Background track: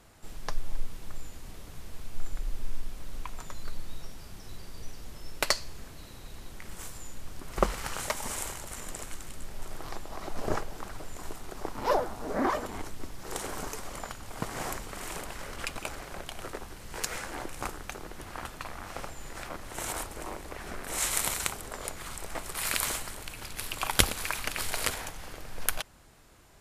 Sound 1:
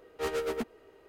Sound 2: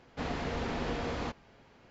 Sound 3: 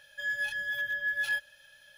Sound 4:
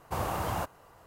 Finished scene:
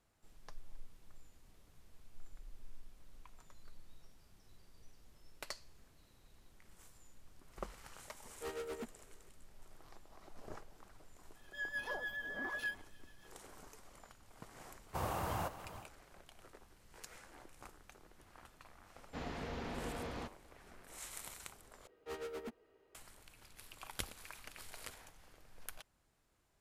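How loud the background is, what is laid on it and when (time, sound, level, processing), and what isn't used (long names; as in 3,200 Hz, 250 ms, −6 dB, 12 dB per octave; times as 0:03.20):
background track −19.5 dB
0:08.22: mix in 1 −11.5 dB
0:11.35: mix in 3 −7.5 dB + rotating-speaker cabinet horn 6.7 Hz
0:14.83: mix in 4 −6.5 dB, fades 0.10 s + single-tap delay 428 ms −13 dB
0:18.96: mix in 2 −8.5 dB
0:21.87: overwrite with 1 −12.5 dB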